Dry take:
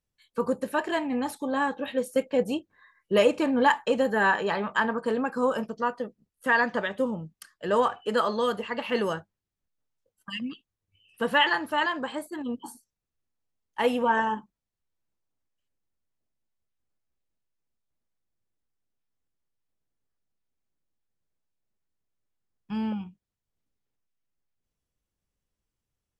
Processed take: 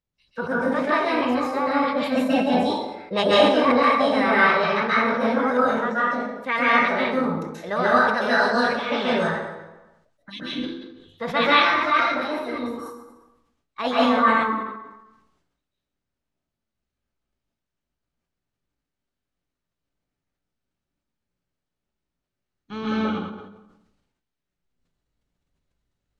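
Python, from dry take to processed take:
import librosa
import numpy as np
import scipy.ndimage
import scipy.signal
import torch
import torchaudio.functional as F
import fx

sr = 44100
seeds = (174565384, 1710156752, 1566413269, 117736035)

y = scipy.signal.sosfilt(scipy.signal.butter(2, 4400.0, 'lowpass', fs=sr, output='sos'), x)
y = fx.formant_shift(y, sr, semitones=4)
y = fx.rev_plate(y, sr, seeds[0], rt60_s=0.8, hf_ratio=0.8, predelay_ms=120, drr_db=-7.5)
y = fx.sustainer(y, sr, db_per_s=54.0)
y = y * librosa.db_to_amplitude(-2.5)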